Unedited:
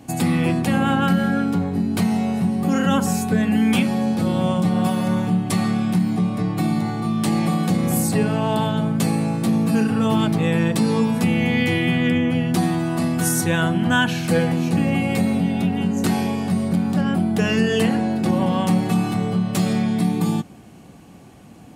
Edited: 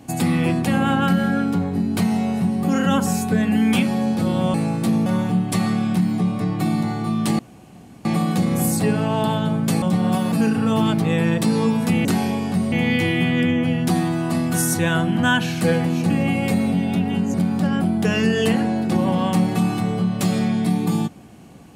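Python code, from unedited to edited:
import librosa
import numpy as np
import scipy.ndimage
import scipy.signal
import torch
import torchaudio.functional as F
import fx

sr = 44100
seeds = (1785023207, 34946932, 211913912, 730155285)

y = fx.edit(x, sr, fx.swap(start_s=4.54, length_s=0.5, other_s=9.14, other_length_s=0.52),
    fx.insert_room_tone(at_s=7.37, length_s=0.66),
    fx.move(start_s=16.01, length_s=0.67, to_s=11.39), tone=tone)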